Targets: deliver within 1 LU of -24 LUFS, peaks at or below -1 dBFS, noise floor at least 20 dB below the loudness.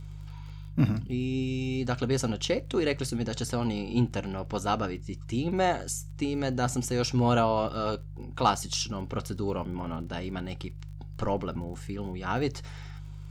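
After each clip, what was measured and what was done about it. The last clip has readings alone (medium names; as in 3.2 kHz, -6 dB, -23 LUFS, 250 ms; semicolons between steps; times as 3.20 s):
tick rate 31 per s; hum 50 Hz; highest harmonic 150 Hz; hum level -39 dBFS; loudness -30.0 LUFS; peak level -9.0 dBFS; loudness target -24.0 LUFS
-> de-click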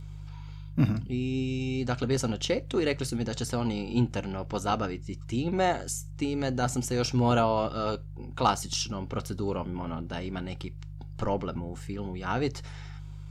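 tick rate 0.075 per s; hum 50 Hz; highest harmonic 150 Hz; hum level -39 dBFS
-> de-hum 50 Hz, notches 3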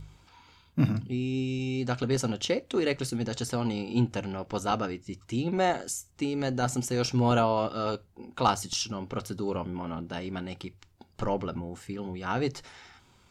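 hum not found; loudness -30.5 LUFS; peak level -10.5 dBFS; loudness target -24.0 LUFS
-> trim +6.5 dB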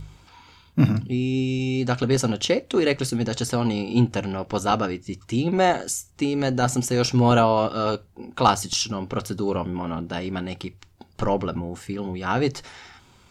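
loudness -24.0 LUFS; peak level -4.0 dBFS; noise floor -55 dBFS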